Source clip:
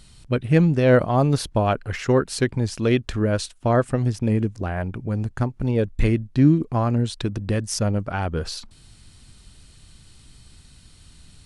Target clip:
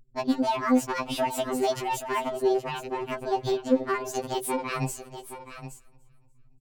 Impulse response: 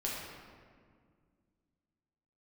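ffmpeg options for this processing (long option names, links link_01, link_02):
-filter_complex "[0:a]acrossover=split=180|7300[link_01][link_02][link_03];[link_01]acompressor=threshold=-25dB:ratio=4[link_04];[link_02]acompressor=threshold=-21dB:ratio=4[link_05];[link_03]acompressor=threshold=-47dB:ratio=4[link_06];[link_04][link_05][link_06]amix=inputs=3:normalize=0,asetrate=76440,aresample=44100,anlmdn=1.58,asplit=2[link_07][link_08];[link_08]aecho=0:1:293|586|879:0.0631|0.029|0.0134[link_09];[link_07][link_09]amix=inputs=2:normalize=0,aeval=exprs='0.211*(cos(1*acos(clip(val(0)/0.211,-1,1)))-cos(1*PI/2))+0.00188*(cos(4*acos(clip(val(0)/0.211,-1,1)))-cos(4*PI/2))':channel_layout=same,asplit=2[link_10][link_11];[link_11]aecho=0:1:821:0.266[link_12];[link_10][link_12]amix=inputs=2:normalize=0,afftfilt=real='re*2.45*eq(mod(b,6),0)':imag='im*2.45*eq(mod(b,6),0)':win_size=2048:overlap=0.75"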